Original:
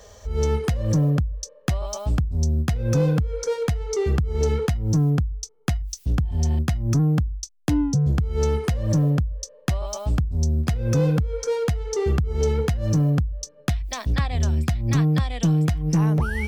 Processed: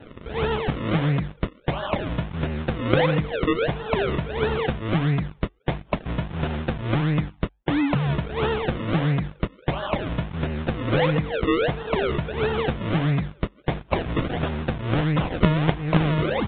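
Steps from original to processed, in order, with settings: high-pass 230 Hz 6 dB/octave; treble shelf 2.3 kHz +9 dB; hum notches 50/100/150/200/250/300/350 Hz; comb 6 ms, depth 43%; in parallel at -8.5 dB: companded quantiser 2-bit; on the sum: vibrato 8.5 Hz 65 cents; decimation with a swept rate 38×, swing 100% 1.5 Hz; resampled via 8 kHz; Vorbis 32 kbps 16 kHz

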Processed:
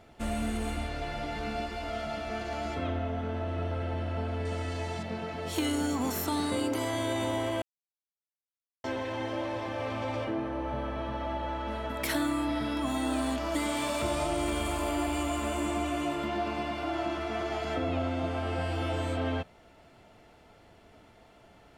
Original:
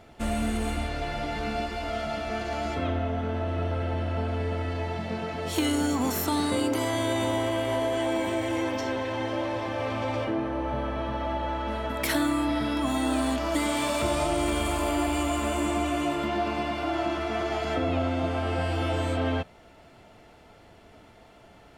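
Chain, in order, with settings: 4.45–5.03 s: peaking EQ 7.6 kHz +13.5 dB 1.4 oct; 7.62–8.84 s: mute; trim -4 dB

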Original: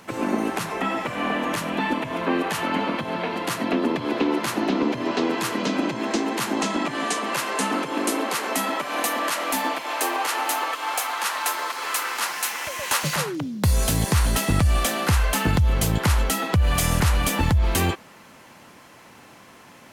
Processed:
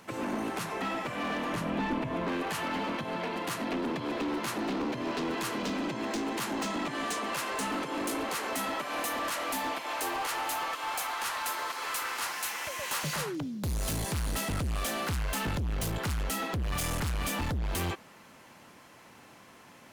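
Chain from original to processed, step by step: hard clipper -23 dBFS, distortion -8 dB; 1.53–2.28 s: tilt EQ -2 dB/octave; trim -6 dB

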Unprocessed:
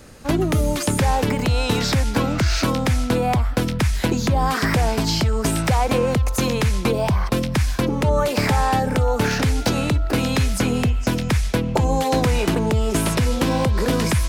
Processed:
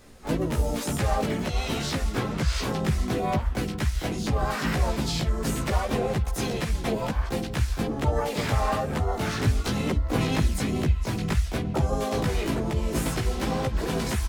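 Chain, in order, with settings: harmony voices -4 st -2 dB, +5 st -12 dB, +7 st -7 dB; chorus voices 4, 1.1 Hz, delay 16 ms, depth 3 ms; trim -7 dB

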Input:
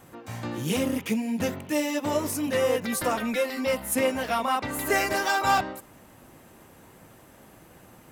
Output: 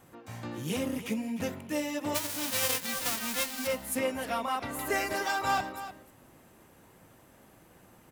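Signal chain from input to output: 2.14–3.66 s: formants flattened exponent 0.1; on a send: delay 303 ms -13 dB; on the sum: trim -6 dB

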